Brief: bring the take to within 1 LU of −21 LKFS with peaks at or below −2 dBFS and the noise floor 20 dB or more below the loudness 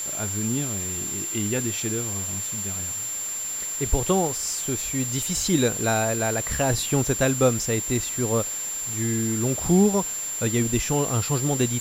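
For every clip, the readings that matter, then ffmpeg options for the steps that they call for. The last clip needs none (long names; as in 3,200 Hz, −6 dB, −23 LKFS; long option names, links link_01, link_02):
interfering tone 7,300 Hz; level of the tone −28 dBFS; background noise floor −30 dBFS; target noise floor −44 dBFS; integrated loudness −24.0 LKFS; sample peak −7.5 dBFS; target loudness −21.0 LKFS
→ -af "bandreject=frequency=7300:width=30"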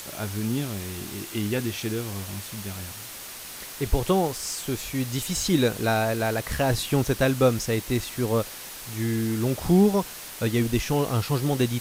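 interfering tone none found; background noise floor −40 dBFS; target noise floor −46 dBFS
→ -af "afftdn=noise_reduction=6:noise_floor=-40"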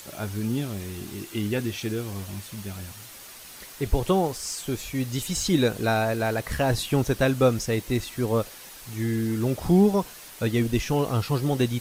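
background noise floor −44 dBFS; target noise floor −46 dBFS
→ -af "afftdn=noise_reduction=6:noise_floor=-44"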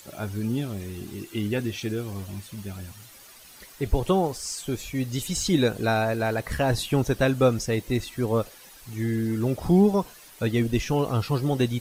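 background noise floor −49 dBFS; integrated loudness −26.0 LKFS; sample peak −8.5 dBFS; target loudness −21.0 LKFS
→ -af "volume=5dB"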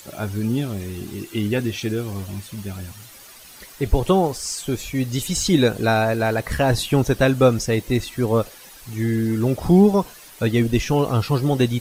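integrated loudness −21.0 LKFS; sample peak −3.5 dBFS; background noise floor −44 dBFS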